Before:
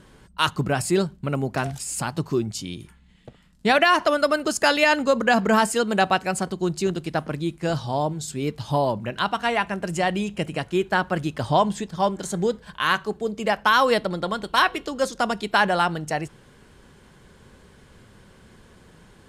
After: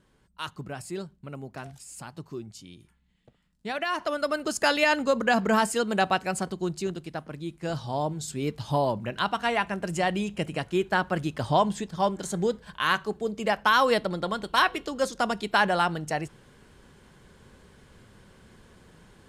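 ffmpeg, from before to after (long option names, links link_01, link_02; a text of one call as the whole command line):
ffmpeg -i in.wav -af "volume=4dB,afade=type=in:start_time=3.74:duration=0.92:silence=0.316228,afade=type=out:start_time=6.47:duration=0.78:silence=0.446684,afade=type=in:start_time=7.25:duration=1:silence=0.398107" out.wav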